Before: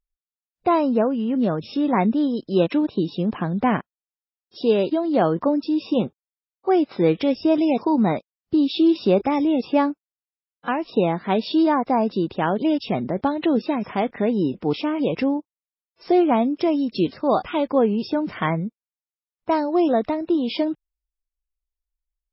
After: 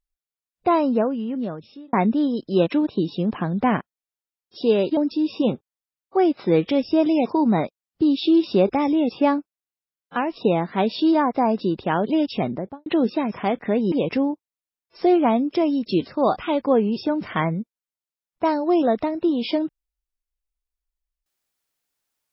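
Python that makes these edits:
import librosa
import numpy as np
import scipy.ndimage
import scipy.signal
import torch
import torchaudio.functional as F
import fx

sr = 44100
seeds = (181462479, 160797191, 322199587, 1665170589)

y = fx.studio_fade_out(x, sr, start_s=12.95, length_s=0.43)
y = fx.edit(y, sr, fx.fade_out_span(start_s=0.89, length_s=1.04),
    fx.cut(start_s=4.97, length_s=0.52),
    fx.cut(start_s=14.44, length_s=0.54), tone=tone)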